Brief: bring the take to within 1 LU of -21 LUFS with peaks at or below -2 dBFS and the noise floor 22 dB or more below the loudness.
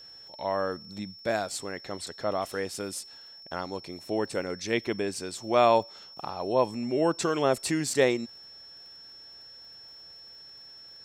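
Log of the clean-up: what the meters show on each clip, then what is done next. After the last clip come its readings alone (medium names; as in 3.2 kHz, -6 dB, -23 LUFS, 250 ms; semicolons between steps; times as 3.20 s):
tick rate 33 per s; steady tone 5.4 kHz; tone level -46 dBFS; loudness -29.0 LUFS; peak level -9.0 dBFS; loudness target -21.0 LUFS
-> de-click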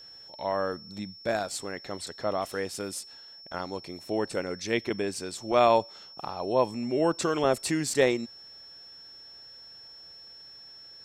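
tick rate 0.72 per s; steady tone 5.4 kHz; tone level -46 dBFS
-> band-stop 5.4 kHz, Q 30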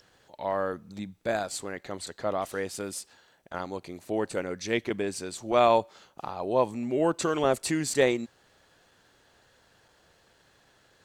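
steady tone not found; loudness -29.0 LUFS; peak level -9.0 dBFS; loudness target -21.0 LUFS
-> trim +8 dB; peak limiter -2 dBFS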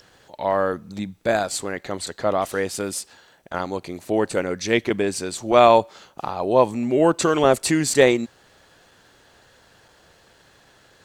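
loudness -21.0 LUFS; peak level -2.0 dBFS; noise floor -56 dBFS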